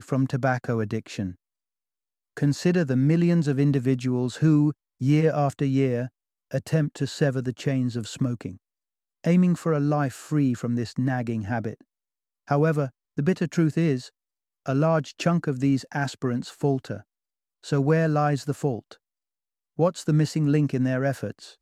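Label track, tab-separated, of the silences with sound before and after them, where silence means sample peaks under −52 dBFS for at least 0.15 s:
1.350000	2.370000	silence
4.730000	5.000000	silence
6.090000	6.510000	silence
8.570000	9.240000	silence
11.820000	12.470000	silence
12.900000	13.170000	silence
14.100000	14.660000	silence
17.030000	17.630000	silence
18.960000	19.780000	silence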